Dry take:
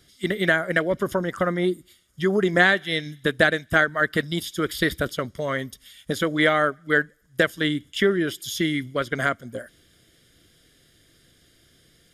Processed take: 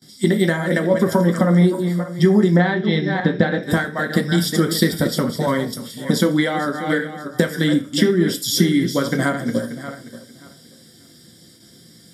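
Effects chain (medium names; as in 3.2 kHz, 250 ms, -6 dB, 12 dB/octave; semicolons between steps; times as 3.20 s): backward echo that repeats 291 ms, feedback 42%, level -10.5 dB; 2.56–3.63 s: distance through air 220 m; compression, threshold -23 dBFS, peak gain reduction 9.5 dB; band-stop 610 Hz, Q 12; gate with hold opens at -48 dBFS; reverberation RT60 0.30 s, pre-delay 3 ms, DRR 4 dB; flange 0.19 Hz, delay 7.9 ms, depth 3.4 ms, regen -68%; treble shelf 4.9 kHz +10.5 dB; trim +4.5 dB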